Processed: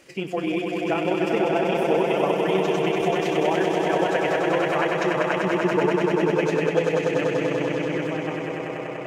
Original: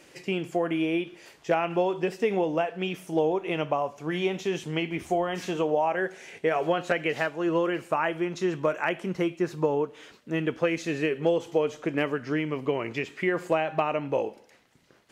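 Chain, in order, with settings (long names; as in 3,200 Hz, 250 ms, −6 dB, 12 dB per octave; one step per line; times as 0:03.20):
fade-out on the ending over 4.30 s
echo that builds up and dies away 163 ms, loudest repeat 5, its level −5.5 dB
time stretch by overlap-add 0.6×, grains 64 ms
level +1.5 dB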